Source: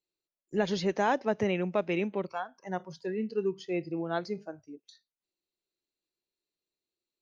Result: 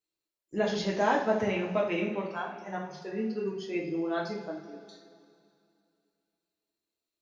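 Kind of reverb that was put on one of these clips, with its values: two-slope reverb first 0.44 s, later 2.6 s, from -16 dB, DRR -3.5 dB; trim -3.5 dB

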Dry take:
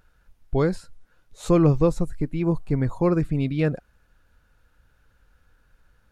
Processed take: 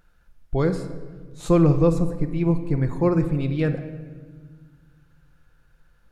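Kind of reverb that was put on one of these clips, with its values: simulated room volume 1700 m³, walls mixed, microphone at 0.81 m; trim -1 dB

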